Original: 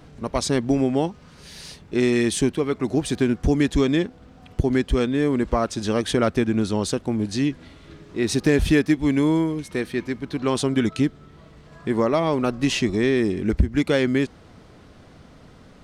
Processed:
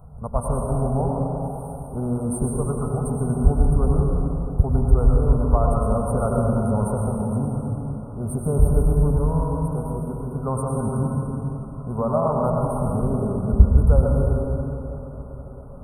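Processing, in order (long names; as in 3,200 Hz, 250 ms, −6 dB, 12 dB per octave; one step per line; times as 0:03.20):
linear-phase brick-wall band-stop 1,500–8,500 Hz
low-shelf EQ 140 Hz +10.5 dB
phaser with its sweep stopped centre 780 Hz, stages 4
on a send: tape delay 333 ms, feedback 85%, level −21 dB, low-pass 4,400 Hz
on the sum: dense smooth reverb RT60 3.3 s, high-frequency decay 0.6×, pre-delay 85 ms, DRR −1.5 dB
level −1 dB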